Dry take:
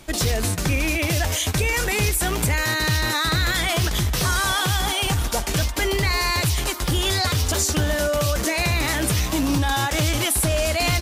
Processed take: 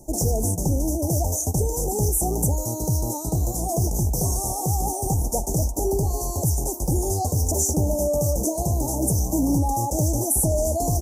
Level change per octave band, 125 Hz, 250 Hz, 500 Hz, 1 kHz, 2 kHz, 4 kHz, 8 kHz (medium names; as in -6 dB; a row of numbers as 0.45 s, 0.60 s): 0.0 dB, +1.0 dB, +0.5 dB, -3.0 dB, under -40 dB, -18.0 dB, +0.5 dB